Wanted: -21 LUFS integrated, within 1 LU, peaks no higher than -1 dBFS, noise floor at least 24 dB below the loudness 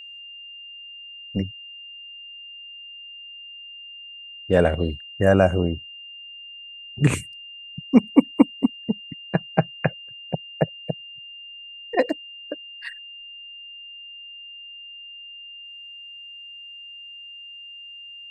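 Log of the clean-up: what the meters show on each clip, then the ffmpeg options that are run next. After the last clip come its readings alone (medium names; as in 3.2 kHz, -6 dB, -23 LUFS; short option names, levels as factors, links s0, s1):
steady tone 2.8 kHz; tone level -38 dBFS; loudness -23.5 LUFS; peak level -1.5 dBFS; loudness target -21.0 LUFS
-> -af "bandreject=f=2800:w=30"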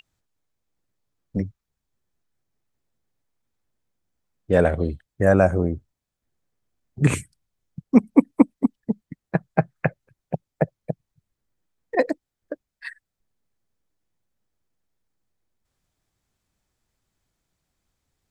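steady tone not found; loudness -23.0 LUFS; peak level -1.5 dBFS; loudness target -21.0 LUFS
-> -af "volume=1.26,alimiter=limit=0.891:level=0:latency=1"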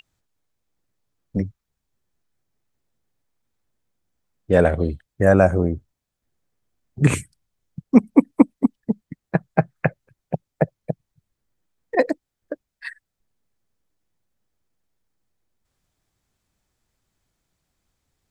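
loudness -21.0 LUFS; peak level -1.0 dBFS; noise floor -82 dBFS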